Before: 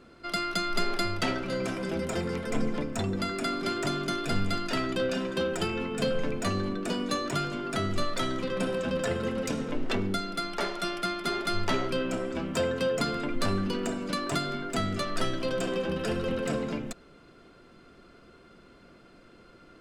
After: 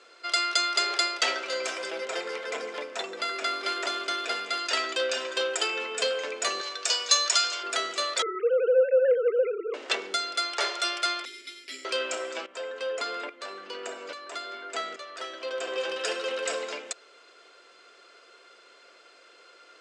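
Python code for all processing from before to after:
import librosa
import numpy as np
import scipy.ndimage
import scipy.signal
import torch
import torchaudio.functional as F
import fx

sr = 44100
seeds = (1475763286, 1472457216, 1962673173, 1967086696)

y = fx.chain(x, sr, fx.median_filter(points=5),
    fx.lowpass(hz=12000.0, slope=12),
    fx.resample_linear(factor=3), at=(1.89, 4.59))
y = fx.chain(y, sr, fx.highpass(hz=610.0, slope=12),
    fx.peak_eq(hz=5500.0, db=10.5, octaves=1.1), at=(6.61, 7.63))
y = fx.chain(y, sr, fx.sine_speech(),
    fx.lowpass(hz=1300.0, slope=12),
    fx.peak_eq(hz=480.0, db=7.5, octaves=0.59), at=(8.22, 9.74))
y = fx.chain(y, sr, fx.vowel_filter(vowel='i'),
    fx.resample_bad(factor=6, down='none', up='hold'), at=(11.25, 11.85))
y = fx.chain(y, sr, fx.high_shelf(hz=3700.0, db=-12.0),
    fx.tremolo_shape(shape='saw_up', hz=1.2, depth_pct=75), at=(12.46, 15.78))
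y = scipy.signal.sosfilt(scipy.signal.ellip(3, 1.0, 60, [450.0, 7700.0], 'bandpass', fs=sr, output='sos'), y)
y = fx.high_shelf(y, sr, hz=2100.0, db=11.5)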